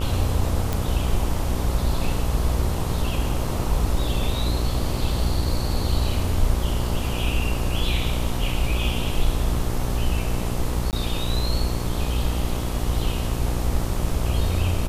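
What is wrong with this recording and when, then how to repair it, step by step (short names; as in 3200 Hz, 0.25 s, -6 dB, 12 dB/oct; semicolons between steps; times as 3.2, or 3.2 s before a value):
buzz 60 Hz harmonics 22 -27 dBFS
0.73 pop
10.91–10.93 gap 18 ms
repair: de-click; de-hum 60 Hz, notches 22; interpolate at 10.91, 18 ms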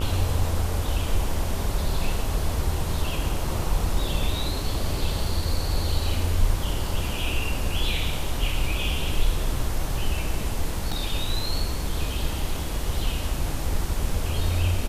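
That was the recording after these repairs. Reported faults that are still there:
none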